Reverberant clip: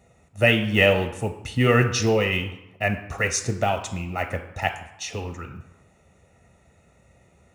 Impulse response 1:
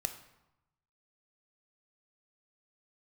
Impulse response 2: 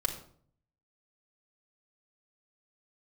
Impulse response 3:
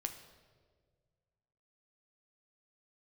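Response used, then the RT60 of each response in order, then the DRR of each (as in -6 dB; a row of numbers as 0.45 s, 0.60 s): 1; 0.90 s, 0.55 s, 1.7 s; 7.0 dB, -0.5 dB, 6.0 dB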